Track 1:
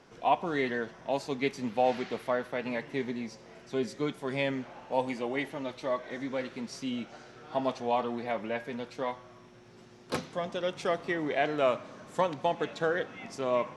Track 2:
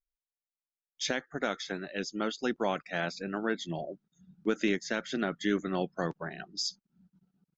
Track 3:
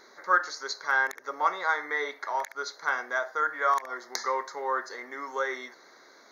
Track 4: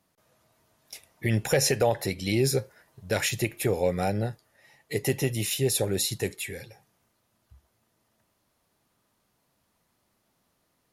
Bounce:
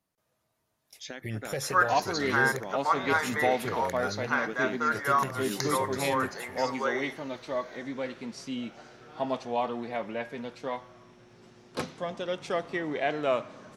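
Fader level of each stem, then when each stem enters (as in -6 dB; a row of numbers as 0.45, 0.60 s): -0.5, -9.5, -0.5, -10.5 dB; 1.65, 0.00, 1.45, 0.00 s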